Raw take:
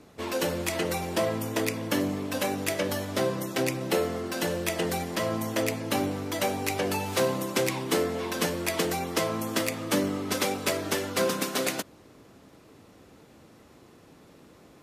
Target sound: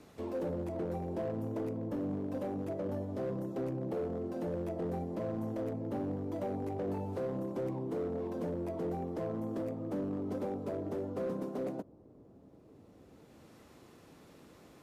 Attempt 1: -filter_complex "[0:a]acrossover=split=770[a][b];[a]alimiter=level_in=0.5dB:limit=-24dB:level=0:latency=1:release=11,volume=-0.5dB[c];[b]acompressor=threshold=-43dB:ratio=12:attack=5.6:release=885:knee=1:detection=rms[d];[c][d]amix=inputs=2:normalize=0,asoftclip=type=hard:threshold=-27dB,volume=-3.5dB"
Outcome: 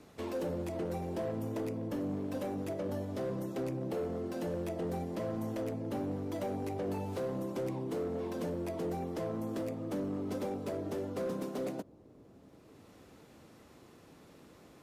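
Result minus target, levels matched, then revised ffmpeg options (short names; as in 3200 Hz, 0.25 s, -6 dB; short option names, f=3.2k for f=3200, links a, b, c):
compressor: peak gain reduction -10.5 dB
-filter_complex "[0:a]acrossover=split=770[a][b];[a]alimiter=level_in=0.5dB:limit=-24dB:level=0:latency=1:release=11,volume=-0.5dB[c];[b]acompressor=threshold=-54.5dB:ratio=12:attack=5.6:release=885:knee=1:detection=rms[d];[c][d]amix=inputs=2:normalize=0,asoftclip=type=hard:threshold=-27dB,volume=-3.5dB"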